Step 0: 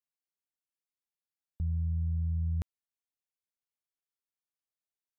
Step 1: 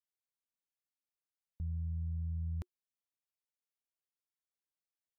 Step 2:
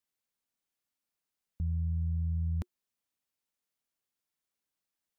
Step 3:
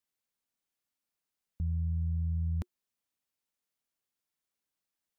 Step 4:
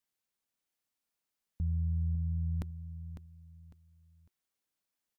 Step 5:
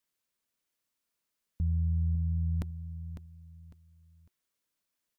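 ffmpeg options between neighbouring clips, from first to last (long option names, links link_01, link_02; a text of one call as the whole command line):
ffmpeg -i in.wav -af "bandreject=frequency=360:width=12,volume=-6.5dB" out.wav
ffmpeg -i in.wav -af "equalizer=frequency=230:width_type=o:width=0.77:gain=4.5,volume=5.5dB" out.wav
ffmpeg -i in.wav -af anull out.wav
ffmpeg -i in.wav -af "aecho=1:1:552|1104|1656:0.299|0.0866|0.0251" out.wav
ffmpeg -i in.wav -af "asuperstop=centerf=790:order=4:qfactor=7.2,volume=3dB" out.wav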